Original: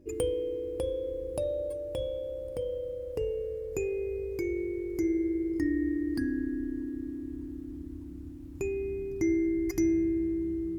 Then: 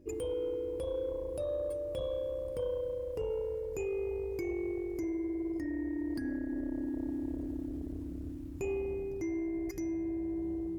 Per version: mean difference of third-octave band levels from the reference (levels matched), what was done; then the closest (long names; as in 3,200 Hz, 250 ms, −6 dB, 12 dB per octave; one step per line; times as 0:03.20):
4.0 dB: brickwall limiter −26 dBFS, peak gain reduction 9.5 dB
speech leveller within 4 dB 0.5 s
saturating transformer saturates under 190 Hz
level −1 dB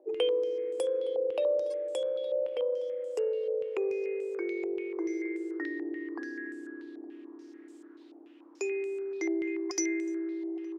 8.0 dB: Butterworth high-pass 380 Hz 36 dB per octave
on a send: single-tap delay 865 ms −20.5 dB
on the sum: low-pass on a step sequencer 6.9 Hz 750–7,800 Hz
level +2 dB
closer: first